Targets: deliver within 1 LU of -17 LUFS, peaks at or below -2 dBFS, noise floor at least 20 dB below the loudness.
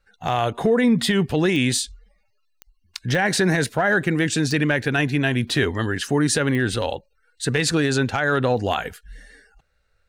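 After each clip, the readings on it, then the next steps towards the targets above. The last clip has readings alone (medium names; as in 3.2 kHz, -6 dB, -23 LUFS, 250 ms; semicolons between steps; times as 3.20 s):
clicks found 5; loudness -21.0 LUFS; peak level -9.0 dBFS; loudness target -17.0 LUFS
-> de-click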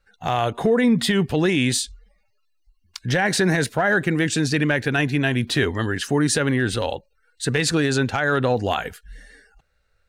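clicks found 0; loudness -21.0 LUFS; peak level -10.5 dBFS; loudness target -17.0 LUFS
-> trim +4 dB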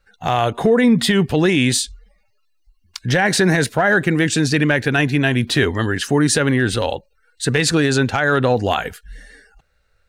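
loudness -17.0 LUFS; peak level -6.5 dBFS; noise floor -62 dBFS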